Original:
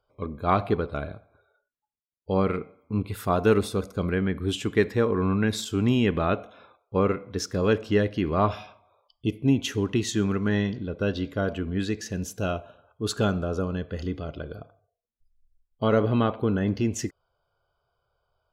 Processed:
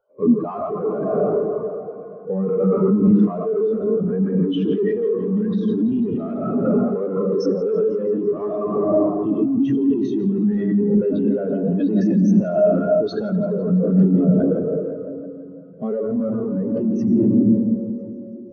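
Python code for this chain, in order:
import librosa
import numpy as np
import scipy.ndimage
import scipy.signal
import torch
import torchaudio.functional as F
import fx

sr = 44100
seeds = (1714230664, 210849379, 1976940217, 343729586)

p1 = scipy.signal.sosfilt(scipy.signal.butter(4, 140.0, 'highpass', fs=sr, output='sos'), x)
p2 = fx.hum_notches(p1, sr, base_hz=50, count=6)
p3 = fx.level_steps(p2, sr, step_db=10)
p4 = p2 + F.gain(torch.from_numpy(p3), -2.0).numpy()
p5 = fx.rev_freeverb(p4, sr, rt60_s=3.0, hf_ratio=0.3, predelay_ms=60, drr_db=4.5)
p6 = np.clip(p5, -10.0 ** (-18.5 / 20.0), 10.0 ** (-18.5 / 20.0))
p7 = fx.over_compress(p6, sr, threshold_db=-30.0, ratio=-1.0)
p8 = fx.echo_thinned(p7, sr, ms=167, feedback_pct=79, hz=340.0, wet_db=-10.0)
p9 = fx.power_curve(p8, sr, exponent=0.5)
p10 = fx.brickwall_lowpass(p9, sr, high_hz=6400.0)
p11 = fx.spectral_expand(p10, sr, expansion=2.5)
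y = F.gain(torch.from_numpy(p11), 7.0).numpy()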